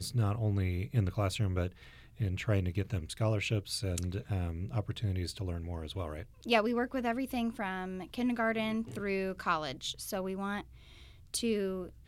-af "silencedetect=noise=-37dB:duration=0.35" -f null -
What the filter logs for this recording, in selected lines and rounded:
silence_start: 1.68
silence_end: 2.20 | silence_duration: 0.52
silence_start: 10.61
silence_end: 11.34 | silence_duration: 0.73